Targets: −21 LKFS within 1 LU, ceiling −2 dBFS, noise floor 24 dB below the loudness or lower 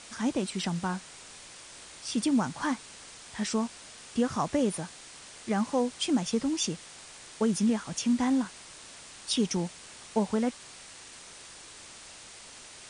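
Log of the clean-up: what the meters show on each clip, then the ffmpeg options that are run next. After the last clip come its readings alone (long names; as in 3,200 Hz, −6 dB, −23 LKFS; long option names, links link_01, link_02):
background noise floor −49 dBFS; target noise floor −54 dBFS; integrated loudness −30.0 LKFS; sample peak −15.0 dBFS; target loudness −21.0 LKFS
→ -af "afftdn=noise_reduction=6:noise_floor=-49"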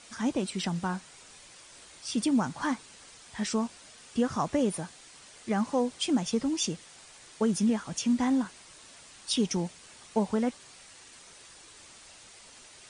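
background noise floor −53 dBFS; target noise floor −54 dBFS
→ -af "afftdn=noise_reduction=6:noise_floor=-53"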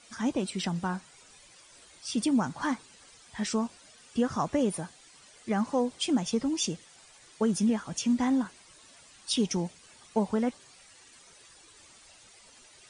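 background noise floor −56 dBFS; integrated loudness −30.0 LKFS; sample peak −15.5 dBFS; target loudness −21.0 LKFS
→ -af "volume=9dB"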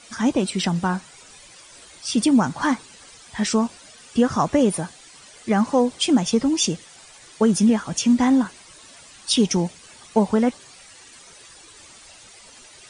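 integrated loudness −21.0 LKFS; sample peak −6.5 dBFS; background noise floor −47 dBFS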